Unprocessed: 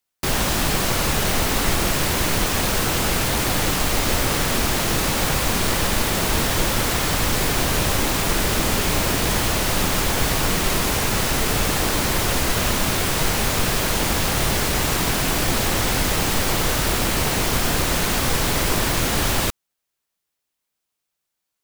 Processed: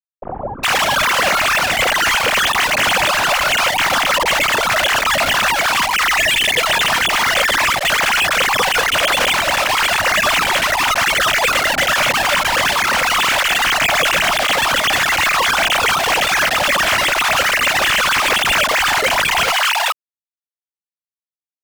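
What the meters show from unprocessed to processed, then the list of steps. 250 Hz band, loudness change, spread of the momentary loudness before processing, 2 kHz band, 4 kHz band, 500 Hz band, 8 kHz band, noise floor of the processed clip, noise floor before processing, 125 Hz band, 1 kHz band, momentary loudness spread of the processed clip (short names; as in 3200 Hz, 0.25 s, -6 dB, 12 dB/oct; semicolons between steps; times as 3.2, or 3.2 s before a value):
-6.5 dB, +6.5 dB, 0 LU, +11.5 dB, +8.0 dB, +4.0 dB, +1.0 dB, under -85 dBFS, -80 dBFS, -9.5 dB, +9.5 dB, 1 LU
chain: sine-wave speech; vocal rider; crossover distortion -39 dBFS; spectral delete 5.77–6.19, 280–1700 Hz; fuzz box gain 36 dB, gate -39 dBFS; bands offset in time lows, highs 0.41 s, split 680 Hz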